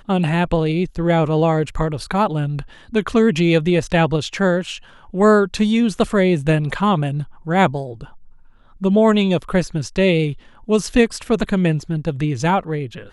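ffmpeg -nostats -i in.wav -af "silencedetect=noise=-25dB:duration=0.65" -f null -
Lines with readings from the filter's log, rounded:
silence_start: 8.04
silence_end: 8.82 | silence_duration: 0.78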